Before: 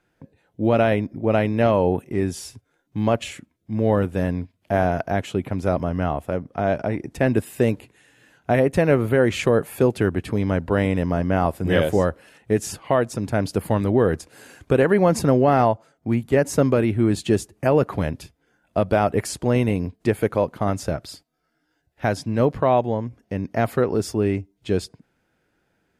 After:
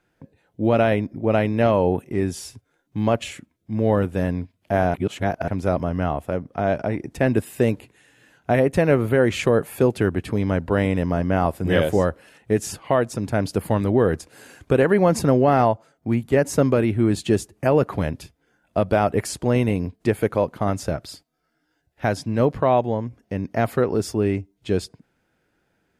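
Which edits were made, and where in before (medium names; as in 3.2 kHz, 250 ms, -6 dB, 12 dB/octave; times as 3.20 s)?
4.94–5.48 s: reverse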